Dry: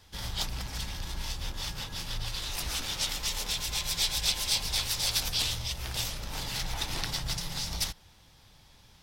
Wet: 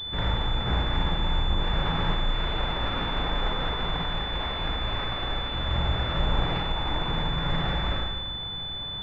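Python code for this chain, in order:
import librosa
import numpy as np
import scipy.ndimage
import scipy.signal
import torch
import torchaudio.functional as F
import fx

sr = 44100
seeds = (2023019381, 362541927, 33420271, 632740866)

y = fx.over_compress(x, sr, threshold_db=-39.0, ratio=-1.0)
y = fx.rev_schroeder(y, sr, rt60_s=1.3, comb_ms=38, drr_db=-5.0)
y = fx.pwm(y, sr, carrier_hz=3500.0)
y = F.gain(torch.from_numpy(y), 7.5).numpy()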